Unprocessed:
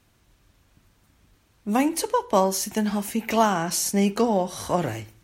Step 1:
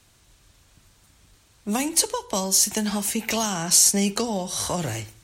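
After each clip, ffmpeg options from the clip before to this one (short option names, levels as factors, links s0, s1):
-filter_complex "[0:a]equalizer=f=250:t=o:w=1:g=-4,equalizer=f=4000:t=o:w=1:g=4,equalizer=f=8000:t=o:w=1:g=8,acrossover=split=220|3000[s0][s1][s2];[s1]acompressor=threshold=0.0355:ratio=6[s3];[s0][s3][s2]amix=inputs=3:normalize=0,volume=1.41"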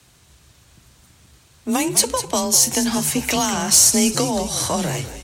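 -filter_complex "[0:a]asplit=6[s0][s1][s2][s3][s4][s5];[s1]adelay=200,afreqshift=-85,volume=0.251[s6];[s2]adelay=400,afreqshift=-170,volume=0.117[s7];[s3]adelay=600,afreqshift=-255,volume=0.0556[s8];[s4]adelay=800,afreqshift=-340,volume=0.026[s9];[s5]adelay=1000,afreqshift=-425,volume=0.0123[s10];[s0][s6][s7][s8][s9][s10]amix=inputs=6:normalize=0,acontrast=43,afreqshift=27,volume=0.891"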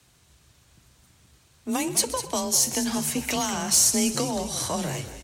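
-af "aecho=1:1:127|254|381|508:0.126|0.0604|0.029|0.0139,volume=0.473"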